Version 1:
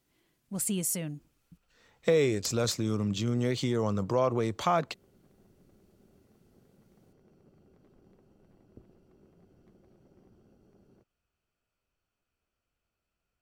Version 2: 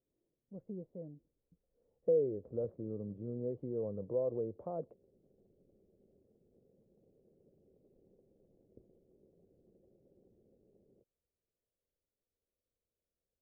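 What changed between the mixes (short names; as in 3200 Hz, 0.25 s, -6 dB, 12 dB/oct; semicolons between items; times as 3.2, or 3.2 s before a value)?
speech -4.0 dB; master: add ladder low-pass 570 Hz, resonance 60%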